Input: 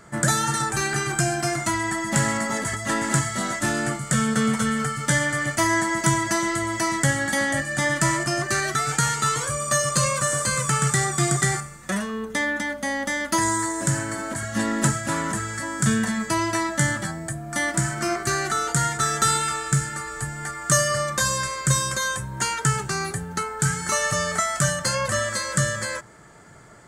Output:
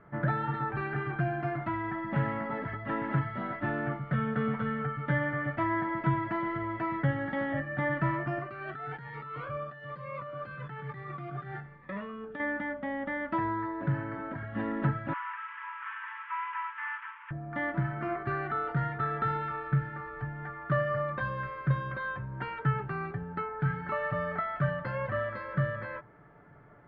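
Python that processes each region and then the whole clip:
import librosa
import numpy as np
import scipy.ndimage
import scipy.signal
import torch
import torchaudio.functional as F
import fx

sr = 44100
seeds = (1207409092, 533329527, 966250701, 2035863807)

y = fx.chain(x, sr, fx.low_shelf(hz=290.0, db=-8.5),
    fx.over_compress(threshold_db=-28.0, ratio=-1.0),
    fx.notch_cascade(direction='rising', hz=1.1), at=(8.39, 12.4))
y = fx.chain(y, sr, fx.delta_mod(bps=16000, step_db=-26.0),
    fx.brickwall_highpass(low_hz=860.0), at=(15.13, 17.31))
y = scipy.signal.sosfilt(scipy.signal.bessel(8, 1600.0, 'lowpass', norm='mag', fs=sr, output='sos'), y)
y = y + 0.3 * np.pad(y, (int(6.9 * sr / 1000.0), 0))[:len(y)]
y = F.gain(torch.from_numpy(y), -7.0).numpy()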